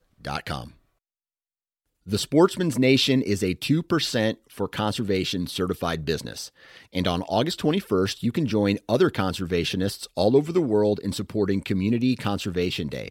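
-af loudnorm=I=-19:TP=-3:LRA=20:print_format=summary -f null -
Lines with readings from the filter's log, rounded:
Input Integrated:    -24.2 LUFS
Input True Peak:      -5.1 dBTP
Input LRA:             3.0 LU
Input Threshold:     -34.4 LUFS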